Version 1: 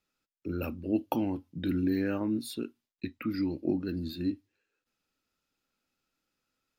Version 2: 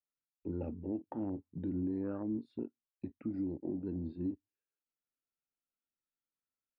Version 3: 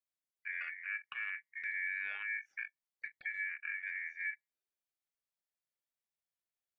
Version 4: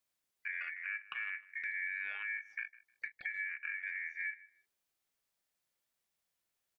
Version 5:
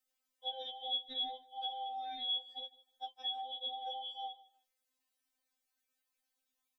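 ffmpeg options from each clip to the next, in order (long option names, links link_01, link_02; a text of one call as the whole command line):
ffmpeg -i in.wav -af "afwtdn=0.0158,lowpass=2200,alimiter=level_in=1dB:limit=-24dB:level=0:latency=1:release=174,volume=-1dB,volume=-3.5dB" out.wav
ffmpeg -i in.wav -af "aeval=exprs='val(0)*sin(2*PI*2000*n/s)':channel_layout=same" out.wav
ffmpeg -i in.wav -filter_complex "[0:a]acompressor=threshold=-52dB:ratio=2,asplit=2[link_01][link_02];[link_02]adelay=155,lowpass=frequency=3800:poles=1,volume=-19dB,asplit=2[link_03][link_04];[link_04]adelay=155,lowpass=frequency=3800:poles=1,volume=0.23[link_05];[link_01][link_03][link_05]amix=inputs=3:normalize=0,volume=8.5dB" out.wav
ffmpeg -i in.wav -af "afftfilt=real='real(if(lt(b,960),b+48*(1-2*mod(floor(b/48),2)),b),0)':imag='imag(if(lt(b,960),b+48*(1-2*mod(floor(b/48),2)),b),0)':win_size=2048:overlap=0.75,afftfilt=real='re*3.46*eq(mod(b,12),0)':imag='im*3.46*eq(mod(b,12),0)':win_size=2048:overlap=0.75,volume=2dB" out.wav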